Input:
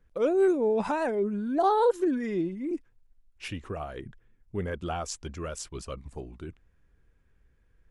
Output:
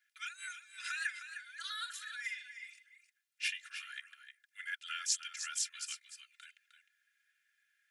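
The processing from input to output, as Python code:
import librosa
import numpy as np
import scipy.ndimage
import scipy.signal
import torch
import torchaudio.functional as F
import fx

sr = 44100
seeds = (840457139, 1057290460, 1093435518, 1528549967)

p1 = scipy.signal.sosfilt(scipy.signal.butter(12, 1500.0, 'highpass', fs=sr, output='sos'), x)
p2 = p1 + 0.88 * np.pad(p1, (int(2.9 * sr / 1000.0), 0))[:len(p1)]
p3 = p2 + fx.echo_single(p2, sr, ms=308, db=-10.0, dry=0)
y = p3 * librosa.db_to_amplitude(2.0)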